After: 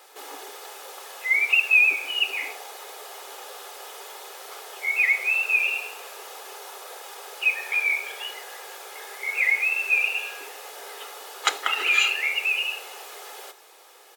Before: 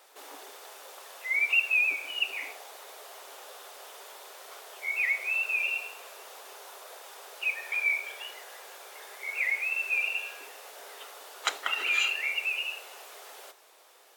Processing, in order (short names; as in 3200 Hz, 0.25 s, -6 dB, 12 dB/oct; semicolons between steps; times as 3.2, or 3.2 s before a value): comb 2.4 ms, depth 37%; gain +6 dB